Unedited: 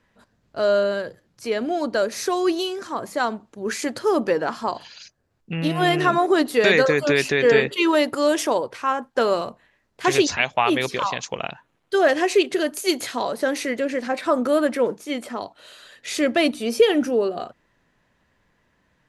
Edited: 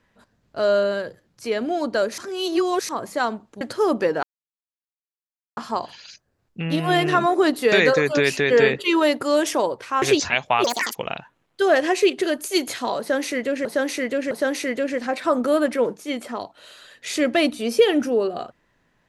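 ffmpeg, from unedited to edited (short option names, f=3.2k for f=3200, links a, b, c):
-filter_complex "[0:a]asplit=10[a][b][c][d][e][f][g][h][i][j];[a]atrim=end=2.182[k];[b]atrim=start=2.178:end=2.892,asetpts=PTS-STARTPTS,areverse[l];[c]atrim=start=2.888:end=3.612[m];[d]atrim=start=3.868:end=4.49,asetpts=PTS-STARTPTS,afade=t=out:st=0.618:d=0.004:c=hsin,apad=pad_dur=1.34[n];[e]atrim=start=4.49:end=8.942,asetpts=PTS-STARTPTS,afade=t=in:d=0.004:c=hsin[o];[f]atrim=start=10.088:end=10.714[p];[g]atrim=start=10.71:end=11.28,asetpts=PTS-STARTPTS,asetrate=81144,aresample=44100,atrim=end_sample=13661,asetpts=PTS-STARTPTS[q];[h]atrim=start=11.276:end=13.982[r];[i]atrim=start=13.318:end=13.982[s];[j]atrim=start=13.318[t];[k][l]acrossfade=d=0.004:c1=hsin:c2=hsin[u];[u][m]acrossfade=d=0.004:c1=hsin:c2=hsin[v];[n][o]concat=n=2:v=0:a=1[w];[v][w]acrossfade=d=0.004:c1=hsin:c2=hsin[x];[x][p]acrossfade=d=0.004:c1=hsin:c2=hsin[y];[y][q]acrossfade=d=0.004:c1=hsin:c2=hsin[z];[z][r]acrossfade=d=0.004:c1=hsin:c2=hsin[aa];[aa][s]acrossfade=d=0.004:c1=hsin:c2=hsin[ab];[ab][t]acrossfade=d=0.004:c1=hsin:c2=hsin"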